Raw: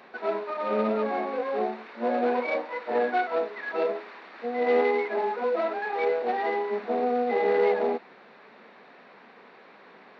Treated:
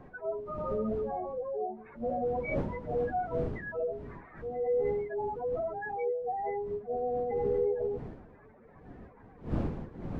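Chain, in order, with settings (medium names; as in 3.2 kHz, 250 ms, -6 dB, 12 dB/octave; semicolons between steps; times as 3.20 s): spectral contrast enhancement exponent 2.8; wind noise 270 Hz -36 dBFS; trim -6 dB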